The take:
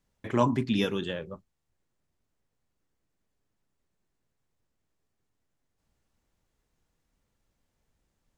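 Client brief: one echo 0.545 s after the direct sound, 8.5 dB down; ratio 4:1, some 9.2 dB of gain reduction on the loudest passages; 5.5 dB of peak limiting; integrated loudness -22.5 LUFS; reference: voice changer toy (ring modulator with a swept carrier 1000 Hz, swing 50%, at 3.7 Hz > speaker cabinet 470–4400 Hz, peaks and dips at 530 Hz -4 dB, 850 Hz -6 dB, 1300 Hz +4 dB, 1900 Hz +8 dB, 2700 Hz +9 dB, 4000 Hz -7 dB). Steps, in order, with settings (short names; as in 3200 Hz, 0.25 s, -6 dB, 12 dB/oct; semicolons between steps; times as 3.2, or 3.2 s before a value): compressor 4:1, threshold -29 dBFS; limiter -25 dBFS; echo 0.545 s -8.5 dB; ring modulator with a swept carrier 1000 Hz, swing 50%, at 3.7 Hz; speaker cabinet 470–4400 Hz, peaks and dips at 530 Hz -4 dB, 850 Hz -6 dB, 1300 Hz +4 dB, 1900 Hz +8 dB, 2700 Hz +9 dB, 4000 Hz -7 dB; gain +15 dB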